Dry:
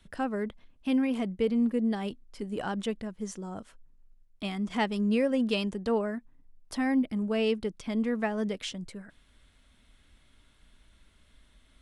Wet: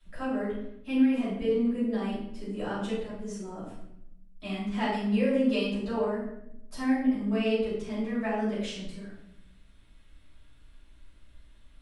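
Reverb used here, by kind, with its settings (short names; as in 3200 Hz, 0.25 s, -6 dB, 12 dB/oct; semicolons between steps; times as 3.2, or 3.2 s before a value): shoebox room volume 230 m³, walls mixed, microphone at 5.9 m; gain -15.5 dB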